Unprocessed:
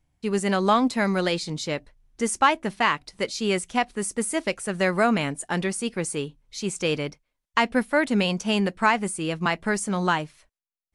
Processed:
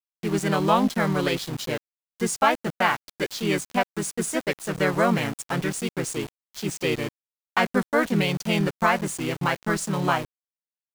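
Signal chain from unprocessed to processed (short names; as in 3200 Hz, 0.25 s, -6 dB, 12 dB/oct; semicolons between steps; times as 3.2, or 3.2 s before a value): harmoniser -4 st -1 dB; sample gate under -30 dBFS; gain -2.5 dB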